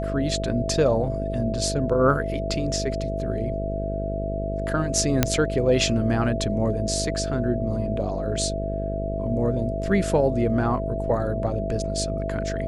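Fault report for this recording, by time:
buzz 50 Hz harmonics 12 -29 dBFS
whine 660 Hz -29 dBFS
5.23 s: pop -2 dBFS

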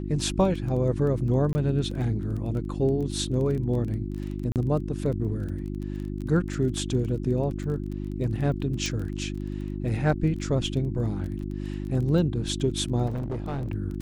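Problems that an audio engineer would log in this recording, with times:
crackle 18 per s -33 dBFS
hum 50 Hz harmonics 7 -32 dBFS
1.53–1.55 s: dropout 20 ms
4.52–4.56 s: dropout 38 ms
8.86 s: pop -16 dBFS
13.06–13.68 s: clipped -26.5 dBFS

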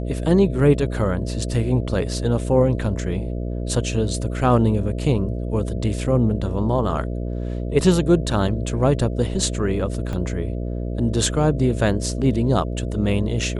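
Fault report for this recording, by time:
buzz 60 Hz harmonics 11 -26 dBFS
10.13 s: dropout 3 ms

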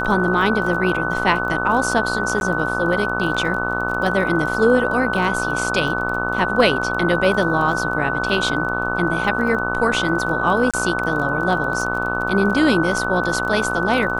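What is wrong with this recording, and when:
buzz 60 Hz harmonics 25 -25 dBFS
crackle 24 per s -27 dBFS
whine 1.5 kHz -24 dBFS
2.40–2.41 s: dropout 11 ms
10.71–10.74 s: dropout 26 ms

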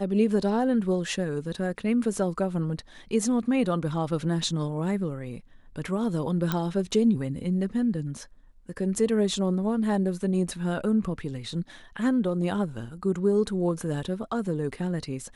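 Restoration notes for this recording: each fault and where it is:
6.52 s: pop -12 dBFS

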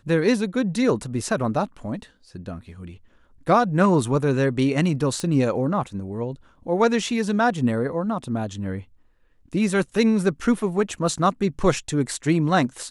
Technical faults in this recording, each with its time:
5.20 s: pop -15 dBFS

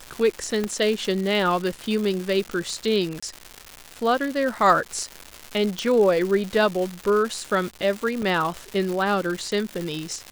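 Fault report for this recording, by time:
crackle 310 per s -27 dBFS
0.64 s: pop -12 dBFS
3.20–3.23 s: dropout 25 ms
5.79 s: pop
8.22 s: dropout 3.8 ms

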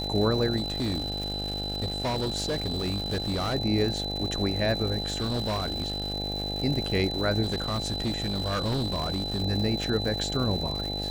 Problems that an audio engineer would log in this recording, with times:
buzz 50 Hz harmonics 17 -34 dBFS
crackle 250 per s -33 dBFS
whine 4 kHz -32 dBFS
0.56–3.55 s: clipped -24.5 dBFS
5.02–6.14 s: clipped -24.5 dBFS
7.42–9.43 s: clipped -24 dBFS

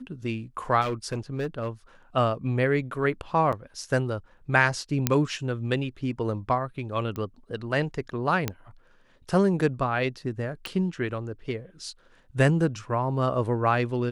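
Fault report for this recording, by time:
0.81–1.69 s: clipped -24 dBFS
3.52–3.53 s: dropout 7.2 ms
5.07 s: pop -5 dBFS
7.16 s: pop -21 dBFS
8.48 s: pop -11 dBFS
10.66 s: pop

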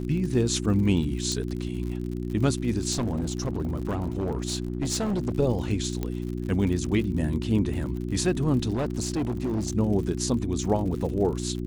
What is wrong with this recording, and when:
crackle 77 per s -34 dBFS
hum 60 Hz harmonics 6 -31 dBFS
1.32 s: pop -16 dBFS
2.91–5.33 s: clipped -23 dBFS
6.03 s: pop -16 dBFS
8.73–9.72 s: clipped -23 dBFS

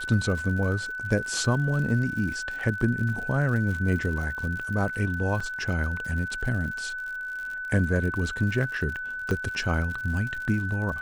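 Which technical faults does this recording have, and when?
crackle 89 per s -34 dBFS
whine 1.5 kHz -31 dBFS
2.59 s: dropout 4.4 ms
5.40 s: dropout 4.6 ms
9.31 s: pop -16 dBFS

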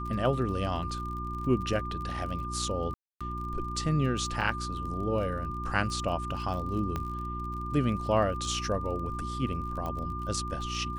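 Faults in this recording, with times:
crackle 32 per s -38 dBFS
hum 60 Hz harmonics 6 -37 dBFS
whine 1.2 kHz -36 dBFS
2.94–3.21 s: dropout 266 ms
6.96 s: pop -19 dBFS
9.86 s: pop -23 dBFS

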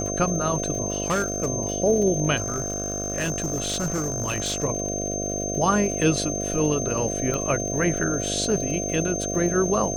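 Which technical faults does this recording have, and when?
buzz 50 Hz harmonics 14 -30 dBFS
crackle 110 per s -32 dBFS
whine 6.3 kHz -29 dBFS
1.06–1.48 s: clipped -19 dBFS
2.36–4.65 s: clipped -21.5 dBFS
7.34 s: pop -14 dBFS

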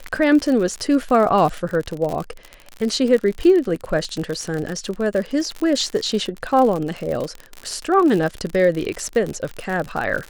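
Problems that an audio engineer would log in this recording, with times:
crackle 58 per s -23 dBFS

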